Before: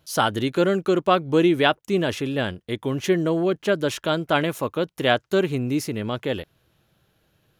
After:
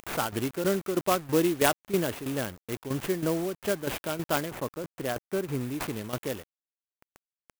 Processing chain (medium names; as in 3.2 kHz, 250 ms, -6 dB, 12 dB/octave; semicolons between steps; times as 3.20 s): high-pass 46 Hz 12 dB/octave; treble shelf 6.4 kHz +6.5 dB; upward compressor, threshold -31 dBFS; bit crusher 6-bit; tremolo saw down 3.1 Hz, depth 70%; sample-rate reducer 6.2 kHz, jitter 0%; 4.51–5.61 s: distance through air 260 m; sampling jitter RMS 0.051 ms; trim -3.5 dB